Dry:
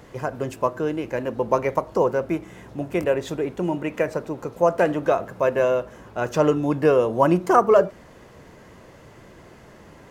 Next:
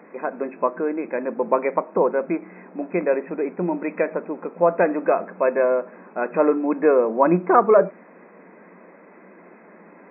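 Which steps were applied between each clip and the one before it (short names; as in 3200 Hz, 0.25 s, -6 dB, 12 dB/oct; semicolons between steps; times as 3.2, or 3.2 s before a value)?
FFT band-pass 170–2600 Hz; gain +1 dB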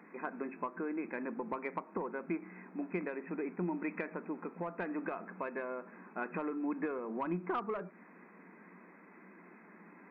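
soft clip -5 dBFS, distortion -24 dB; compressor 10:1, threshold -22 dBFS, peak gain reduction 11.5 dB; bell 560 Hz -12.5 dB 0.82 oct; gain -6 dB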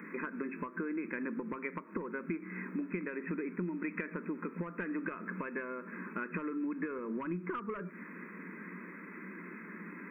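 compressor, threshold -44 dBFS, peak gain reduction 12.5 dB; fixed phaser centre 1800 Hz, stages 4; gain +12 dB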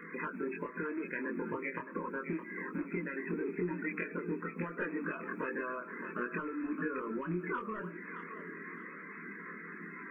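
bin magnitudes rounded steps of 30 dB; thinning echo 0.616 s, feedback 32%, high-pass 590 Hz, level -7 dB; chorus voices 4, 0.25 Hz, delay 24 ms, depth 1.6 ms; gain +4 dB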